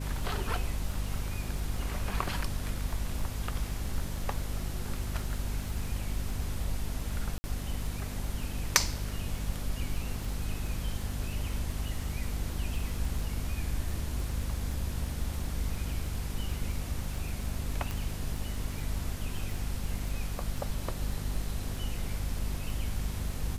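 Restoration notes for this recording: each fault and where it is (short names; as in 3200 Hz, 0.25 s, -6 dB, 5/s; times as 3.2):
crackle 19/s -36 dBFS
hum 50 Hz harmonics 5 -37 dBFS
7.38–7.44 gap 60 ms
17.91 pop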